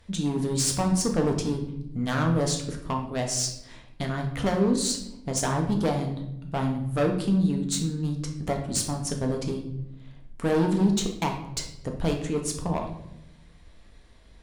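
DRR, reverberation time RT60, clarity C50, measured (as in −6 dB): 2.0 dB, 0.80 s, 7.0 dB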